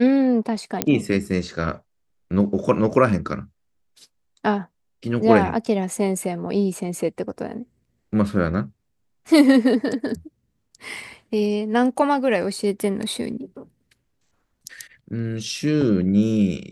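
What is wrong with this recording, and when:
0.82 pop -2 dBFS

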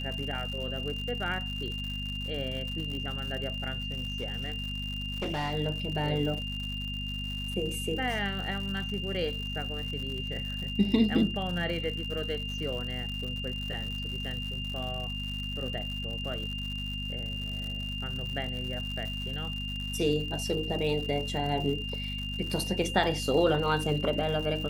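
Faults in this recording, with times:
crackle 140/s -36 dBFS
hum 50 Hz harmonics 5 -37 dBFS
tone 2800 Hz -36 dBFS
3.82–5.54 clipped -27.5 dBFS

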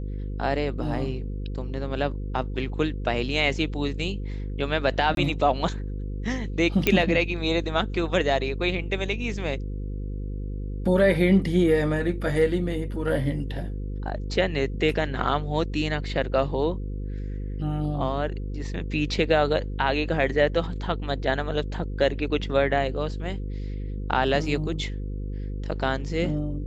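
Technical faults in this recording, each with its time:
buzz 50 Hz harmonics 10 -31 dBFS
5.15–5.17 gap 22 ms
6.87 pop -6 dBFS

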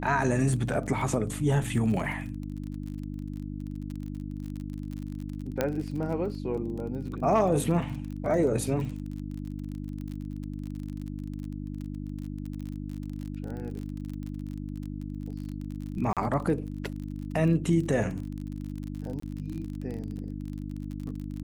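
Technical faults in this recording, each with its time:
crackle 34/s -35 dBFS
hum 50 Hz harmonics 6 -36 dBFS
1.64 gap 3.5 ms
5.61 pop -12 dBFS
16.13–16.17 gap 37 ms
19.2–19.22 gap 24 ms

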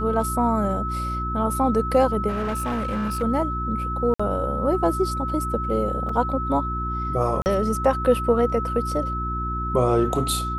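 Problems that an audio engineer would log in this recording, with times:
hum 60 Hz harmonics 6 -29 dBFS
tone 1300 Hz -27 dBFS
2.28–3.23 clipped -22 dBFS
4.14–4.2 gap 55 ms
6.09 gap 3.6 ms
7.42–7.46 gap 39 ms

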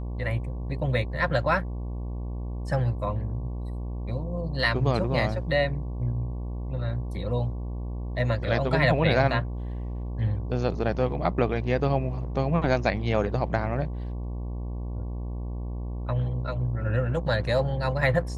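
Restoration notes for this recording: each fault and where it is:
buzz 60 Hz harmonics 19 -32 dBFS

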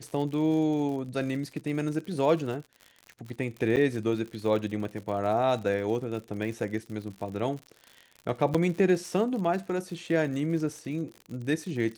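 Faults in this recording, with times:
crackle 81/s -36 dBFS
3.76–3.77 gap 8.3 ms
8.54–8.55 gap 6.3 ms

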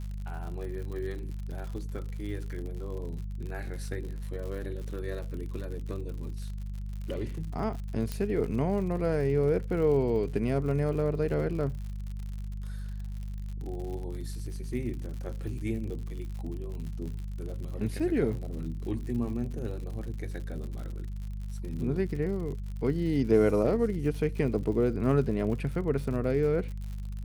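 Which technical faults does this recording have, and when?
crackle 81/s -38 dBFS
hum 50 Hz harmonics 4 -36 dBFS
8.12 pop -19 dBFS

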